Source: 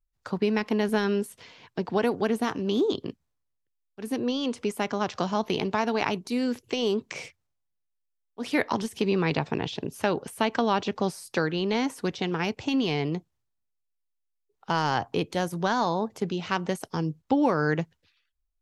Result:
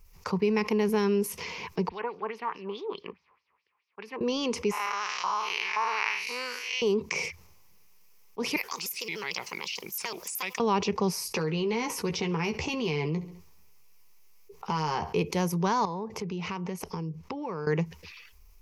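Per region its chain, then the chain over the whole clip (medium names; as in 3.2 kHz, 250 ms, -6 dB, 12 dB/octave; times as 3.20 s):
1.89–4.21 s: block-companded coder 7-bit + distance through air 400 m + LFO band-pass sine 4.7 Hz 980–5800 Hz
4.71–6.82 s: spectral blur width 160 ms + LFO high-pass saw up 1.9 Hz 1–2.1 kHz
8.56–10.60 s: differentiator + word length cut 12-bit, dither triangular + vibrato with a chosen wave square 6.7 Hz, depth 250 cents
11.17–15.15 s: doubling 13 ms -6 dB + compression 2.5:1, threshold -30 dBFS + feedback delay 68 ms, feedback 38%, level -23 dB
15.85–17.67 s: treble shelf 7 kHz -11 dB + compression 4:1, threshold -41 dBFS
whole clip: rippled EQ curve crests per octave 0.81, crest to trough 10 dB; level flattener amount 50%; trim -5.5 dB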